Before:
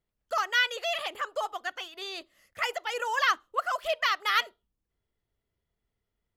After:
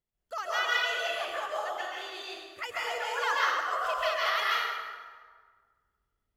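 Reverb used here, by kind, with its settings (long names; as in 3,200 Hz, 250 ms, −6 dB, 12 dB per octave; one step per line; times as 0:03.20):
dense smooth reverb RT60 1.6 s, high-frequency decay 0.65×, pre-delay 120 ms, DRR −6.5 dB
level −8 dB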